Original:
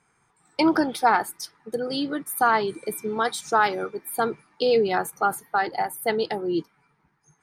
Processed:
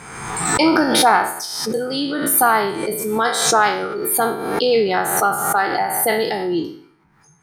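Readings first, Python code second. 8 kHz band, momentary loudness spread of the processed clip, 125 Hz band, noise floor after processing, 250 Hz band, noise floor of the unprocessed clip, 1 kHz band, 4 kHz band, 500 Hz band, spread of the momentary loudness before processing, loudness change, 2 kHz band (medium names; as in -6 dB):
+15.5 dB, 9 LU, +8.5 dB, -55 dBFS, +6.0 dB, -68 dBFS, +6.0 dB, +10.5 dB, +5.5 dB, 10 LU, +7.0 dB, +7.0 dB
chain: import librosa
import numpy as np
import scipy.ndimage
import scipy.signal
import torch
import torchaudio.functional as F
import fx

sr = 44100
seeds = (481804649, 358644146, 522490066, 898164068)

y = fx.spec_trails(x, sr, decay_s=0.55)
y = fx.pre_swell(y, sr, db_per_s=41.0)
y = y * 10.0 ** (3.5 / 20.0)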